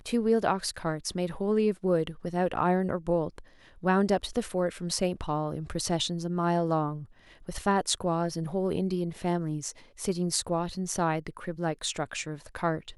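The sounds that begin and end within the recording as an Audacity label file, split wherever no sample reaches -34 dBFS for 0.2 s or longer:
3.840000	7.020000	sound
7.490000	9.710000	sound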